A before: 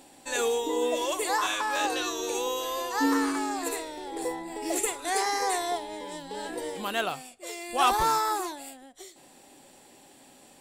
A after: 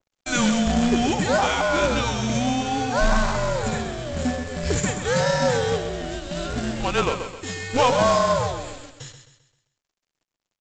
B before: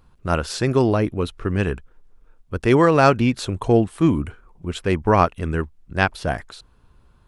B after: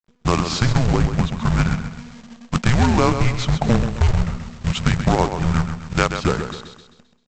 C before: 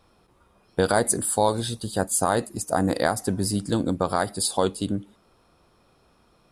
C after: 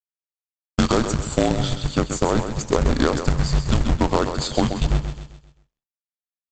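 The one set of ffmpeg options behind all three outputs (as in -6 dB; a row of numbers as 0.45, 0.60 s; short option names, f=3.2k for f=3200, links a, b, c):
-filter_complex "[0:a]agate=range=-27dB:threshold=-49dB:ratio=16:detection=peak,afreqshift=-250,asplit=2[a][b];[b]alimiter=limit=-11.5dB:level=0:latency=1:release=291,volume=2.5dB[c];[a][c]amix=inputs=2:normalize=0,acrusher=bits=8:dc=4:mix=0:aa=0.000001,acompressor=threshold=-15dB:ratio=2.5,aresample=16000,acrusher=bits=2:mode=log:mix=0:aa=0.000001,aresample=44100,aecho=1:1:131|262|393|524|655:0.376|0.154|0.0632|0.0259|0.0106,adynamicequalizer=threshold=0.0126:dfrequency=2300:dqfactor=0.7:tfrequency=2300:tqfactor=0.7:attack=5:release=100:ratio=0.375:range=3:mode=cutabove:tftype=highshelf"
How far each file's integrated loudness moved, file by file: +6.0, 0.0, +2.5 LU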